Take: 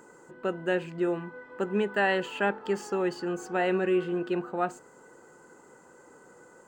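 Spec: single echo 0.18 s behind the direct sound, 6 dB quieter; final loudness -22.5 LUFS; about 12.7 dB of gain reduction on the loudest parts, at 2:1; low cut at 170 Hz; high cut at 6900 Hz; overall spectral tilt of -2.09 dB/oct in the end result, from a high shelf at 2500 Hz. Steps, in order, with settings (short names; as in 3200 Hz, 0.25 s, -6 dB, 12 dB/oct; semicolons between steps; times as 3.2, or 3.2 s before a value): HPF 170 Hz; LPF 6900 Hz; high shelf 2500 Hz -6.5 dB; compressor 2:1, threshold -47 dBFS; echo 0.18 s -6 dB; gain +19 dB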